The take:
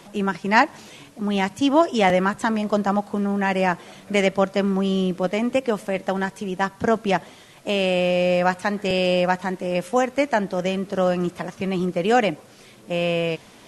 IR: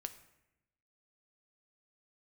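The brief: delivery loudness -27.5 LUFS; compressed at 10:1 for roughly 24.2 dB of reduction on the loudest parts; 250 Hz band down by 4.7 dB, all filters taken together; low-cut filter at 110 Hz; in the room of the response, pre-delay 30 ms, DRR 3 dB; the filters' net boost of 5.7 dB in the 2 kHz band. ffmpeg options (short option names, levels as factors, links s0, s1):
-filter_complex "[0:a]highpass=110,equalizer=f=250:t=o:g=-6.5,equalizer=f=2000:t=o:g=7,acompressor=threshold=0.0251:ratio=10,asplit=2[s0][s1];[1:a]atrim=start_sample=2205,adelay=30[s2];[s1][s2]afir=irnorm=-1:irlink=0,volume=1[s3];[s0][s3]amix=inputs=2:normalize=0,volume=2.37"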